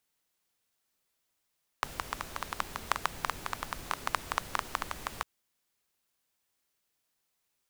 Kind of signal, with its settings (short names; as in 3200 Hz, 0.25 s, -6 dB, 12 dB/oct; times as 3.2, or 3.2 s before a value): rain from filtered ticks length 3.40 s, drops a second 9.2, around 1100 Hz, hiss -7 dB